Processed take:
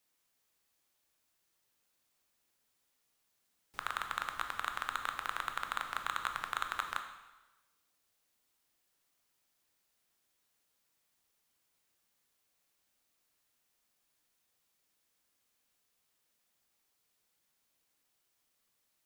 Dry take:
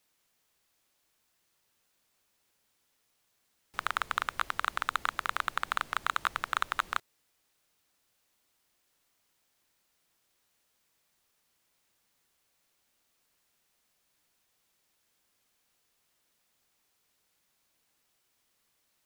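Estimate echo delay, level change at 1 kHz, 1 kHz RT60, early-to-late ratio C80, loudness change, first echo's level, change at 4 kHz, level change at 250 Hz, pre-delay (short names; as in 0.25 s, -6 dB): none, -5.5 dB, 1.1 s, 10.0 dB, -5.5 dB, none, -5.0 dB, -5.0 dB, 8 ms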